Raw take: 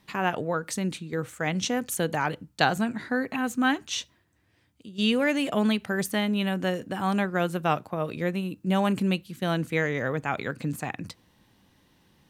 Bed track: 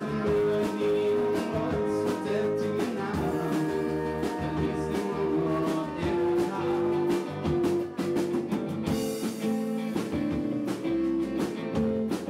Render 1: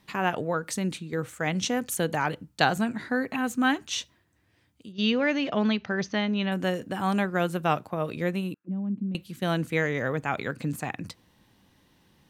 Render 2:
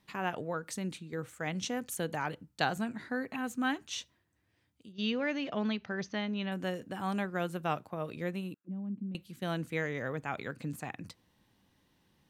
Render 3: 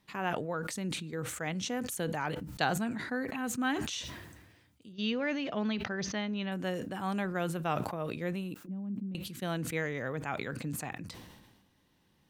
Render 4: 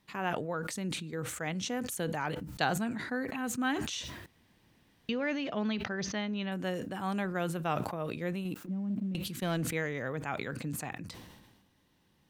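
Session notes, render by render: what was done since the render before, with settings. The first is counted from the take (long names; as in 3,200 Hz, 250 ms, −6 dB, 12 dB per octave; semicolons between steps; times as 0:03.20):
0:04.92–0:06.52: Chebyshev low-pass filter 6,200 Hz, order 6; 0:08.54–0:09.15: envelope filter 220–1,600 Hz, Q 5.7, down, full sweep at −24.5 dBFS
level −8 dB
level that may fall only so fast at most 42 dB per second
0:04.26–0:05.09: fill with room tone; 0:08.45–0:09.73: leveller curve on the samples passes 1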